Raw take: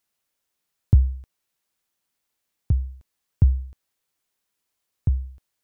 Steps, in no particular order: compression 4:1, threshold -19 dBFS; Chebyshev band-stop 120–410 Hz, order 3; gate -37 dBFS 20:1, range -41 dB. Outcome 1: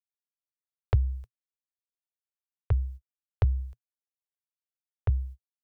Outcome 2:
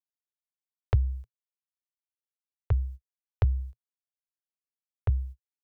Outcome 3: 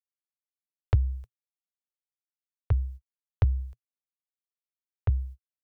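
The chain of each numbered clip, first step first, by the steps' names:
gate > compression > Chebyshev band-stop; compression > gate > Chebyshev band-stop; gate > Chebyshev band-stop > compression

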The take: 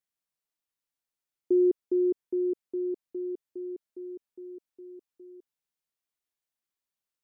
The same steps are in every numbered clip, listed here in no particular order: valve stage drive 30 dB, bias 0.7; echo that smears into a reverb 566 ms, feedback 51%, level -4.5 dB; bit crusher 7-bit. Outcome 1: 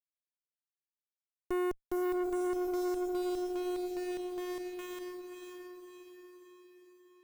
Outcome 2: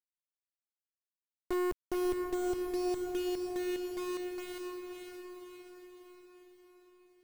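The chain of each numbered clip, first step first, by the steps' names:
bit crusher > echo that smears into a reverb > valve stage; valve stage > bit crusher > echo that smears into a reverb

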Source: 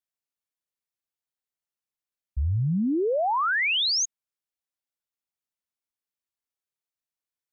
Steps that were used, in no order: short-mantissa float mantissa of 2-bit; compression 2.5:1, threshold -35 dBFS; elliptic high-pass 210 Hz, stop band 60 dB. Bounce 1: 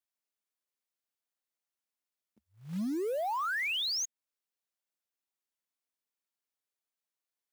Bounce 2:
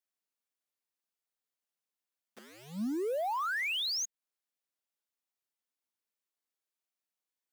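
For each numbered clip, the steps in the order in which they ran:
elliptic high-pass > compression > short-mantissa float; compression > short-mantissa float > elliptic high-pass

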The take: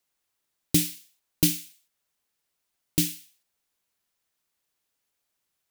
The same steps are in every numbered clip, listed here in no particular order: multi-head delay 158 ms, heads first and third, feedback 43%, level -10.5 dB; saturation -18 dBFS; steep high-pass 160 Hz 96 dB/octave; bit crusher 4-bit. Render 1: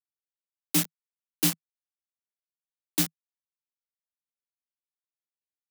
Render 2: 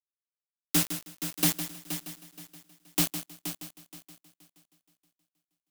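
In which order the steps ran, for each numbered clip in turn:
saturation > multi-head delay > bit crusher > steep high-pass; saturation > steep high-pass > bit crusher > multi-head delay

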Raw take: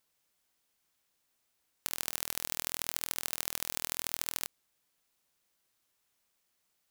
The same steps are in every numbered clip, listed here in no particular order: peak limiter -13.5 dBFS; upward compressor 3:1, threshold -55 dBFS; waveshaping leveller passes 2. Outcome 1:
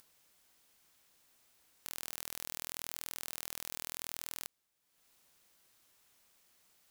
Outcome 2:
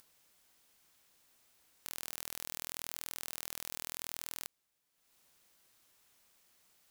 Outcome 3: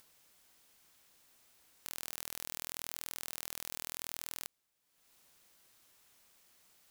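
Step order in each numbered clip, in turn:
peak limiter > upward compressor > waveshaping leveller; upward compressor > peak limiter > waveshaping leveller; peak limiter > waveshaping leveller > upward compressor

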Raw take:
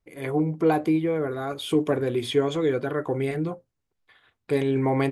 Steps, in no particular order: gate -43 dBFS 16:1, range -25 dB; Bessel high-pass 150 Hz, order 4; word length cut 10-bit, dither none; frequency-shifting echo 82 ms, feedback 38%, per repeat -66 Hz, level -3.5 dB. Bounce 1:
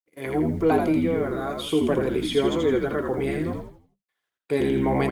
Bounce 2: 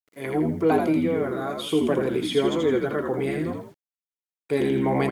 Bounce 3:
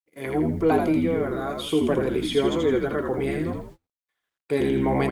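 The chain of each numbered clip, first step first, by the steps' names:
word length cut > Bessel high-pass > gate > frequency-shifting echo; frequency-shifting echo > Bessel high-pass > gate > word length cut; Bessel high-pass > frequency-shifting echo > word length cut > gate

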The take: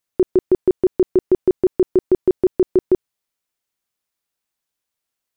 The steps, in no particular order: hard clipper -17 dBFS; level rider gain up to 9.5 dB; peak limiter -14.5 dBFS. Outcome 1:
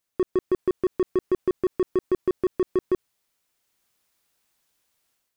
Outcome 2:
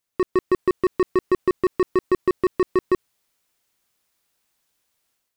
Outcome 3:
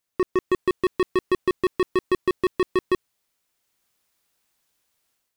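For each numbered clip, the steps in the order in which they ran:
level rider > peak limiter > hard clipper; hard clipper > level rider > peak limiter; level rider > hard clipper > peak limiter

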